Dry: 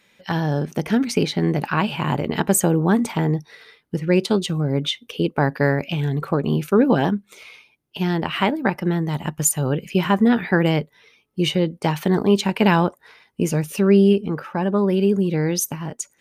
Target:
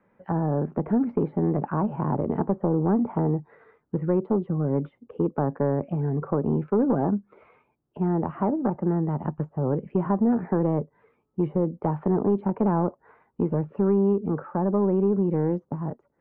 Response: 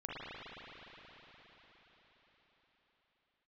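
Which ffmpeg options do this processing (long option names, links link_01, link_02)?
-filter_complex "[0:a]acrossover=split=190|1000[link_01][link_02][link_03];[link_01]acompressor=threshold=-30dB:ratio=4[link_04];[link_02]acompressor=threshold=-18dB:ratio=4[link_05];[link_03]acompressor=threshold=-39dB:ratio=4[link_06];[link_04][link_05][link_06]amix=inputs=3:normalize=0,asoftclip=type=tanh:threshold=-13.5dB,lowpass=frequency=1300:width=0.5412,lowpass=frequency=1300:width=1.3066"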